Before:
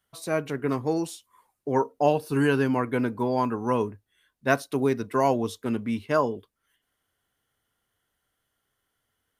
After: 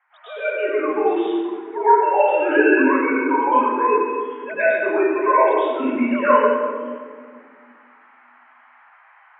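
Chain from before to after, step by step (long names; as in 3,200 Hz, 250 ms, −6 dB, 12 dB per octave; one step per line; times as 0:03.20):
three sine waves on the formant tracks
spectral tilt +3.5 dB per octave
in parallel at +3 dB: downward compressor, threshold −52 dBFS, peak gain reduction 31 dB
on the sum: noise in a band 780–2,100 Hz −60 dBFS
low-pass that shuts in the quiet parts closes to 2,500 Hz, open at −35.5 dBFS
convolution reverb RT60 1.8 s, pre-delay 98 ms, DRR −17.5 dB
level −8.5 dB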